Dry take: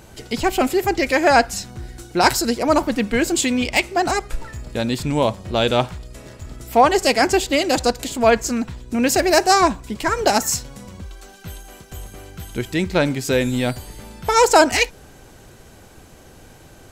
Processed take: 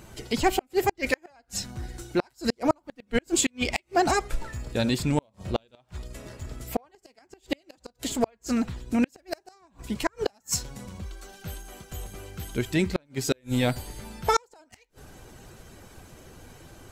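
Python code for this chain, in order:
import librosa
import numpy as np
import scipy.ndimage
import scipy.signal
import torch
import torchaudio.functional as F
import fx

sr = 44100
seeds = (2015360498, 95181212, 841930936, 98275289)

y = fx.spec_quant(x, sr, step_db=15)
y = fx.gate_flip(y, sr, shuts_db=-8.0, range_db=-40)
y = y * 10.0 ** (-2.5 / 20.0)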